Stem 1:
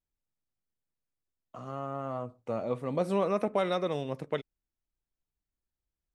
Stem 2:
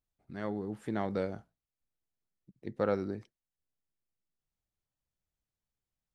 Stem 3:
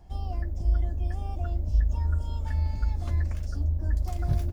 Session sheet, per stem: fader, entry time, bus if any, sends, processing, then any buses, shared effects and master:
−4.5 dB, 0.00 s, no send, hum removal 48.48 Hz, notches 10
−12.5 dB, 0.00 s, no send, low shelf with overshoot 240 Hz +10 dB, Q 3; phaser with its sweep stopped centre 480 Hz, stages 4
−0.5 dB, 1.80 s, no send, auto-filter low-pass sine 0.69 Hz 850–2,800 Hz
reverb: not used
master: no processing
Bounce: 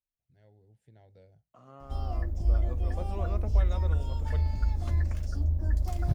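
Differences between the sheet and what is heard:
stem 1 −4.5 dB → −12.0 dB
stem 2 −12.5 dB → −21.5 dB
stem 3: missing auto-filter low-pass sine 0.69 Hz 850–2,800 Hz

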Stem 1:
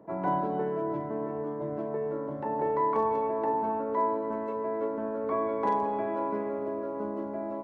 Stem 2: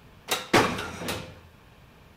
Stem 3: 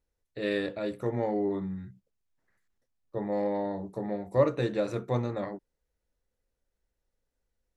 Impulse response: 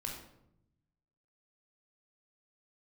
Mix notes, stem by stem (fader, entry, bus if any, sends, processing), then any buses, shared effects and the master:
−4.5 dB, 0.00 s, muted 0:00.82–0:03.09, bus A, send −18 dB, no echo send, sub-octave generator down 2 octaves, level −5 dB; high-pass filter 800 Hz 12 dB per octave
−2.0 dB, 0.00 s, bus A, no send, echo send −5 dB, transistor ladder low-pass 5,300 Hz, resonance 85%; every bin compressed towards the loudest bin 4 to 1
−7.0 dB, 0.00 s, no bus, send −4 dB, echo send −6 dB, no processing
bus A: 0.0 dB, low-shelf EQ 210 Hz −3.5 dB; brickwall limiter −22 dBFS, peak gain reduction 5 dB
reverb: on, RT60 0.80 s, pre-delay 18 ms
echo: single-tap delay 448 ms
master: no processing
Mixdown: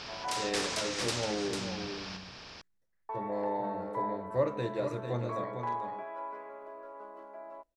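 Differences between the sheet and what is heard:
stem 1: send −18 dB → −24 dB
reverb return −8.0 dB

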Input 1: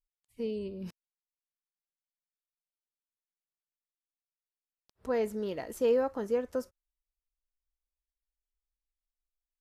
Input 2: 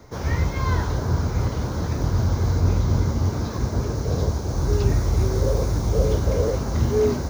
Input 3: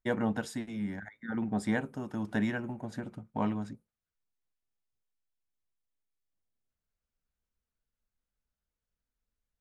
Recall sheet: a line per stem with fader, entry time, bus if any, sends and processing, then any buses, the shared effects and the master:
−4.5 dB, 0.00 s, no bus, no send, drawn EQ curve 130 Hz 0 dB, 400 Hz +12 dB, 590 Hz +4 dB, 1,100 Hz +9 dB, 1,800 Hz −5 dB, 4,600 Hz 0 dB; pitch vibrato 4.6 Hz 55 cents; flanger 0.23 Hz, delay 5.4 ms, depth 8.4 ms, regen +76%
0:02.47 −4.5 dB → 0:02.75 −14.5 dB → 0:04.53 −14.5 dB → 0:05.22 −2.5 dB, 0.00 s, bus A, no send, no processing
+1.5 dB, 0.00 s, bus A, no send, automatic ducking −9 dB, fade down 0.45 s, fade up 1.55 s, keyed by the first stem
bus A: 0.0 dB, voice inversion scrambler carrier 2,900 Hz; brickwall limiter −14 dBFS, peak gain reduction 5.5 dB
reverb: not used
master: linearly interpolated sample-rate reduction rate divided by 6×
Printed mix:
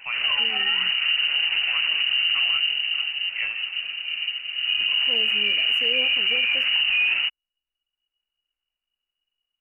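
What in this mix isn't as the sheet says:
stem 1: missing drawn EQ curve 130 Hz 0 dB, 400 Hz +12 dB, 590 Hz +4 dB, 1,100 Hz +9 dB, 1,800 Hz −5 dB, 4,600 Hz 0 dB
stem 2 −4.5 dB → +2.5 dB
master: missing linearly interpolated sample-rate reduction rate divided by 6×

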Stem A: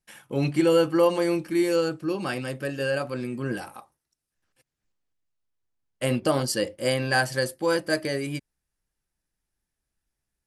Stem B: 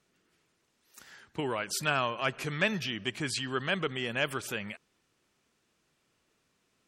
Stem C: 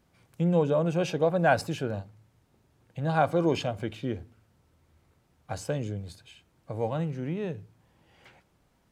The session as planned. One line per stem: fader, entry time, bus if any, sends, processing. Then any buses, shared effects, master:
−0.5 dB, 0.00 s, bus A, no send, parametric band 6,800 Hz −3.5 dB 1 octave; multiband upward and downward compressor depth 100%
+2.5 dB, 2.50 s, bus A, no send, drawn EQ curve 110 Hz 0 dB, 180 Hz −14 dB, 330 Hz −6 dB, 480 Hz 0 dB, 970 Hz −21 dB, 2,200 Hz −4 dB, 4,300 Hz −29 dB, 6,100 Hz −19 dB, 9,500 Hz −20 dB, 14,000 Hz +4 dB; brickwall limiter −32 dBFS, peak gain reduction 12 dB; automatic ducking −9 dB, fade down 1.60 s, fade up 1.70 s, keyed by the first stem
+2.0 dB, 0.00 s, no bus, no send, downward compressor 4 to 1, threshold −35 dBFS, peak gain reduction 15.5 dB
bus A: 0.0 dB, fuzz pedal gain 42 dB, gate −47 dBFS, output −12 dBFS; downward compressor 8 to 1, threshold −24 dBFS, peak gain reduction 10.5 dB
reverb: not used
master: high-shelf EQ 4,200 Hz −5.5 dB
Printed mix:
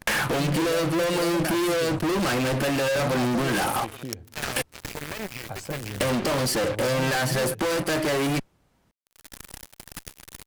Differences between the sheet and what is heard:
stem B +2.5 dB → −4.0 dB
master: missing high-shelf EQ 4,200 Hz −5.5 dB

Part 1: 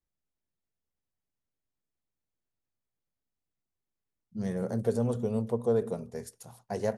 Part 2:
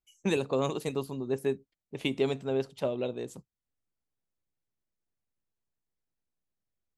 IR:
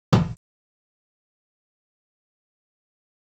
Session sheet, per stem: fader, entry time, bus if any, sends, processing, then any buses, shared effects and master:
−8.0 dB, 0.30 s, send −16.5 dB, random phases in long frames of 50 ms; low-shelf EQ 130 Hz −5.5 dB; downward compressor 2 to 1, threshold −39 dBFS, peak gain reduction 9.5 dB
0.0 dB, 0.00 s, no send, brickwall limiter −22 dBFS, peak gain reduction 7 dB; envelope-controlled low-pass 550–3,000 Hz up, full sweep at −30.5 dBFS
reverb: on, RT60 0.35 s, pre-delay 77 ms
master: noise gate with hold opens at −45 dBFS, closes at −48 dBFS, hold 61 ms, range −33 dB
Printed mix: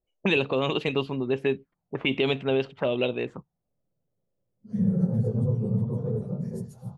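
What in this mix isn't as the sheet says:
stem 2 0.0 dB → +6.5 dB
master: missing noise gate with hold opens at −45 dBFS, closes at −48 dBFS, hold 61 ms, range −33 dB

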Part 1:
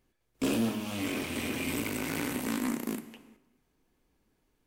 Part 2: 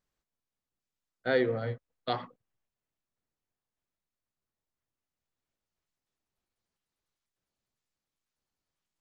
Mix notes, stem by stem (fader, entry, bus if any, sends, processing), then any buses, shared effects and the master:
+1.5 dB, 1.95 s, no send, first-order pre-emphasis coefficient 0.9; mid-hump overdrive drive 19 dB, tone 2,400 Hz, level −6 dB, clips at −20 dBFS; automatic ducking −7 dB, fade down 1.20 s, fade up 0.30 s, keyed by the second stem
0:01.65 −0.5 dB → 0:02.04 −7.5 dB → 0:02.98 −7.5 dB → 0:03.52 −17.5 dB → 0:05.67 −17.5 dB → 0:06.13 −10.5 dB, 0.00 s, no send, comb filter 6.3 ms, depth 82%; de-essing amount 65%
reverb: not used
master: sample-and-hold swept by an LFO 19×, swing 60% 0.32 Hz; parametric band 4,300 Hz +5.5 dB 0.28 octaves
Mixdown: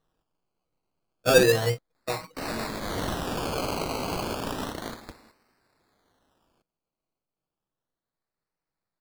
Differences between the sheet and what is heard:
stem 1 +1.5 dB → +9.0 dB
stem 2 −0.5 dB → +6.5 dB

